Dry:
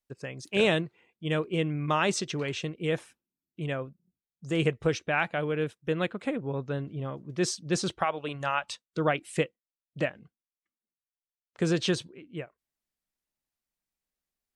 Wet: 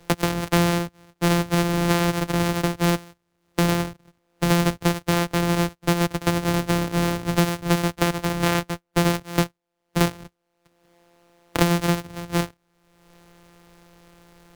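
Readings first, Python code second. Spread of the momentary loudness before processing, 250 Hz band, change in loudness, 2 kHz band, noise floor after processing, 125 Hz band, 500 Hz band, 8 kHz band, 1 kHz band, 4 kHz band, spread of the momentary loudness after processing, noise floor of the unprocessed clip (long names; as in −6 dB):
12 LU, +9.5 dB, +7.0 dB, +5.0 dB, −75 dBFS, +10.0 dB, +4.0 dB, +8.5 dB, +7.5 dB, +6.5 dB, 6 LU, below −85 dBFS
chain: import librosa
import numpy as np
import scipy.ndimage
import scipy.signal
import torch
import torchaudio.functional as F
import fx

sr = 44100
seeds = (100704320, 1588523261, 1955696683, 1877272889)

p1 = np.r_[np.sort(x[:len(x) // 256 * 256].reshape(-1, 256), axis=1).ravel(), x[len(x) // 256 * 256:]]
p2 = fx.fold_sine(p1, sr, drive_db=4, ceiling_db=-12.0)
p3 = p1 + F.gain(torch.from_numpy(p2), -5.0).numpy()
y = fx.band_squash(p3, sr, depth_pct=100)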